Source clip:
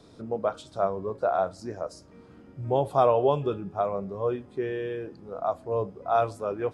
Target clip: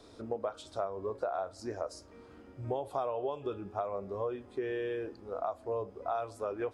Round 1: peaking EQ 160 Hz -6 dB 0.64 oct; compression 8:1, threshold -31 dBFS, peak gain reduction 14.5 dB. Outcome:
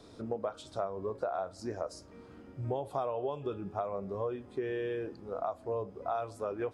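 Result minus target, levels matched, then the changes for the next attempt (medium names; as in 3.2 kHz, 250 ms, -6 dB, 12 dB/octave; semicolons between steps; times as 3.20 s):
125 Hz band +3.5 dB
change: peaking EQ 160 Hz -16.5 dB 0.64 oct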